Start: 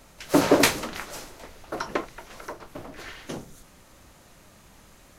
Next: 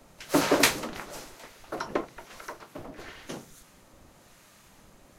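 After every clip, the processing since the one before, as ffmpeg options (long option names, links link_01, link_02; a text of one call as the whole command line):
ffmpeg -i in.wav -filter_complex "[0:a]acrossover=split=990[link_01][link_02];[link_01]aeval=exprs='val(0)*(1-0.5/2+0.5/2*cos(2*PI*1*n/s))':channel_layout=same[link_03];[link_02]aeval=exprs='val(0)*(1-0.5/2-0.5/2*cos(2*PI*1*n/s))':channel_layout=same[link_04];[link_03][link_04]amix=inputs=2:normalize=0,acrossover=split=100[link_05][link_06];[link_05]aeval=exprs='max(val(0),0)':channel_layout=same[link_07];[link_07][link_06]amix=inputs=2:normalize=0" out.wav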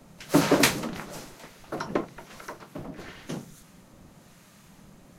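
ffmpeg -i in.wav -af "equalizer=frequency=170:width=1.2:gain=10" out.wav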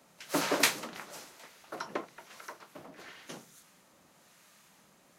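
ffmpeg -i in.wav -af "highpass=frequency=760:poles=1,volume=-3.5dB" out.wav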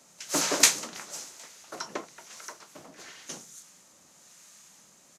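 ffmpeg -i in.wav -af "equalizer=frequency=6700:width=1.1:gain=13.5,aresample=32000,aresample=44100" out.wav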